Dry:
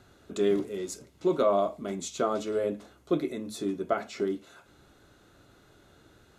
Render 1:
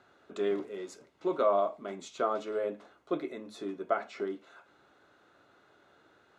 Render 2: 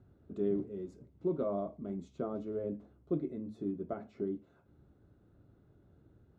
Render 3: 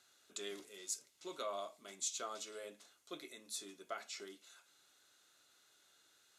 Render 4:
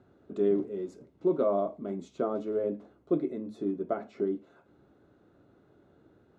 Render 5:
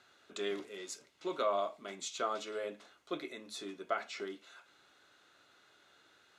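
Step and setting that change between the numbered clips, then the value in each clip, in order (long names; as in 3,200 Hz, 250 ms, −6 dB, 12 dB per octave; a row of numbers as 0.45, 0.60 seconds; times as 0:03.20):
resonant band-pass, frequency: 1,100, 100, 7,900, 290, 2,700 Hertz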